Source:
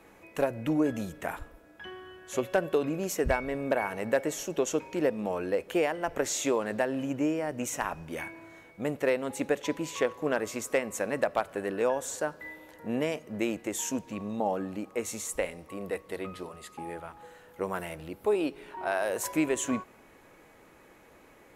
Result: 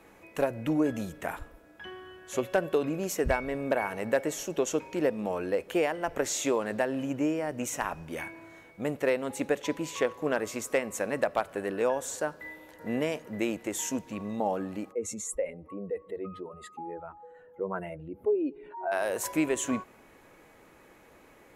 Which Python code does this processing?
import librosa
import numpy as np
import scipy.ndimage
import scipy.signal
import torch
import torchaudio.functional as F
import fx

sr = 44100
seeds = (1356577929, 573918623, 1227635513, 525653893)

y = fx.echo_throw(x, sr, start_s=12.34, length_s=0.5, ms=460, feedback_pct=60, wet_db=-3.5)
y = fx.spec_expand(y, sr, power=1.9, at=(14.91, 18.91), fade=0.02)